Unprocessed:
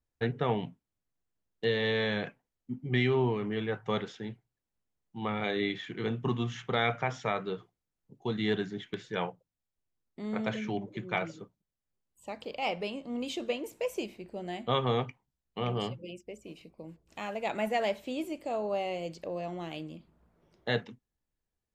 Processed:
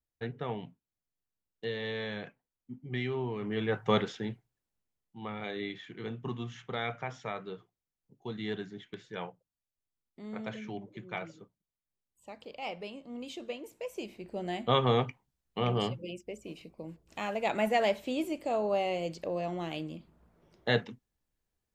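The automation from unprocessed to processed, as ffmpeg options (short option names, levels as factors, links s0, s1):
-af "volume=5.01,afade=t=in:st=3.29:d=0.64:silence=0.251189,afade=t=out:st=3.93:d=1.25:silence=0.266073,afade=t=in:st=13.93:d=0.45:silence=0.354813"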